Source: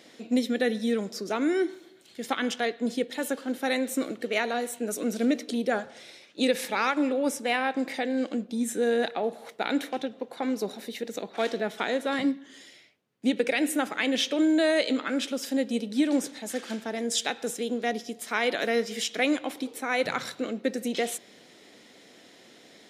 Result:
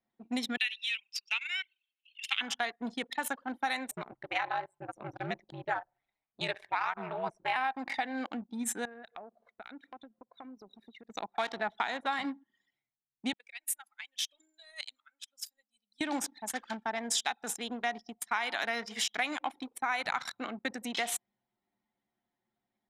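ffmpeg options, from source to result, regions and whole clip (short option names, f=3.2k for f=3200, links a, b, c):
-filter_complex "[0:a]asettb=1/sr,asplit=3[a][b][c];[a]atrim=end=0.574[d];[b]atrim=start=0.57:end=2.41,asetpts=PTS-STARTPTS,afade=t=in:d=0.004:c=qsin,afade=t=out:st=1.836:d=0.004:c=qsin,highpass=f=2.7k:t=q:w=8.7,adynamicequalizer=threshold=0.00708:dfrequency=4200:dqfactor=0.7:tfrequency=4200:tqfactor=0.7:attack=5:release=100:ratio=0.375:range=2.5:mode=cutabove:tftype=highshelf[e];[c]atrim=start=2.406[f];[d][e]acrossfade=d=0.004:c1=hsin:c2=qsin[g];[g][f]acrossfade=d=0.004:c1=qsin:c2=hsin,asettb=1/sr,asplit=3[h][i][j];[h]atrim=end=3.914[k];[i]atrim=start=3.91:end=7.56,asetpts=PTS-STARTPTS,afade=t=in:d=0.004:c=qsin,afade=t=out:st=3.646:d=0.004:c=qsin,bass=f=250:g=-9,treble=f=4k:g=-9,aeval=exprs='val(0)*sin(2*PI*94*n/s)':c=same[l];[j]atrim=start=7.556[m];[k][l]acrossfade=d=0.004:c1=hsin:c2=qsin[n];[n][m]acrossfade=d=0.004:c1=qsin:c2=hsin,asettb=1/sr,asplit=3[o][p][q];[o]atrim=end=8.854[r];[p]atrim=start=8.85:end=11.1,asetpts=PTS-STARTPTS,afade=t=in:d=0.004:c=qsin,afade=t=out:st=2.246:d=0.004:c=qsin,equalizer=f=840:t=o:w=0.3:g=-13,acompressor=threshold=-39dB:ratio=3:attack=3.2:release=140:knee=1:detection=peak[s];[q]atrim=start=11.096[t];[r][s]acrossfade=d=0.004:c1=hsin:c2=qsin[u];[u][t]acrossfade=d=0.004:c1=qsin:c2=hsin,asettb=1/sr,asplit=3[v][w][x];[v]atrim=end=13.334[y];[w]atrim=start=13.33:end=16.01,asetpts=PTS-STARTPTS,afade=t=in:d=0.004:c=qsin,afade=t=out:st=2.676:d=0.004:c=qsin,aderivative,tremolo=f=1.9:d=0.34[z];[x]atrim=start=16.006[aa];[y][z]acrossfade=d=0.004:c1=hsin:c2=qsin[ab];[ab][aa]acrossfade=d=0.004:c1=qsin:c2=hsin,anlmdn=3.98,lowshelf=f=650:t=q:w=3:g=-9,acompressor=threshold=-30dB:ratio=6,volume=2dB"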